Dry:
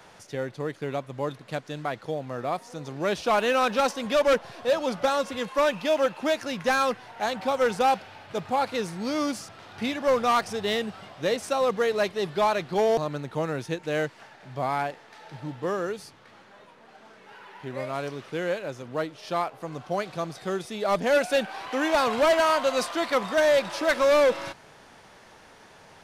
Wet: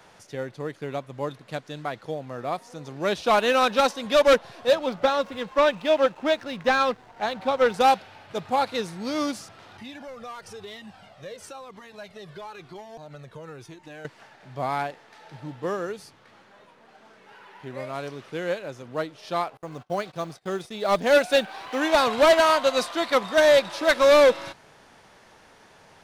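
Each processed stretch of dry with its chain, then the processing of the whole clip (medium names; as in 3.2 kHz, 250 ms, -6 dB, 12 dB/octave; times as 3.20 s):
4.75–7.74 s: low-pass 4.4 kHz + hysteresis with a dead band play -41 dBFS
9.77–14.05 s: compression, threshold -30 dBFS + Shepard-style flanger falling 1 Hz
19.57–21.82 s: block-companded coder 7-bit + gate -43 dBFS, range -26 dB
whole clip: dynamic bell 3.8 kHz, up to +5 dB, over -50 dBFS, Q 4.8; upward expansion 1.5:1, over -30 dBFS; trim +4.5 dB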